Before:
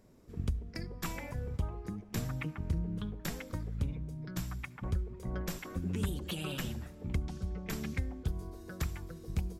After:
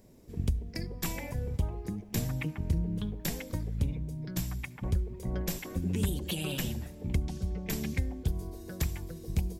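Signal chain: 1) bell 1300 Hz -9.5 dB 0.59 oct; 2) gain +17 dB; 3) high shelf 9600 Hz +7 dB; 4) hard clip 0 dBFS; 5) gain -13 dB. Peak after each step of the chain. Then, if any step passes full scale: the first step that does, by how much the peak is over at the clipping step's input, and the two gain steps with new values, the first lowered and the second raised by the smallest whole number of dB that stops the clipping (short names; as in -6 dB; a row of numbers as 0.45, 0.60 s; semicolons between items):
-22.0, -5.0, -4.5, -4.5, -17.5 dBFS; no overload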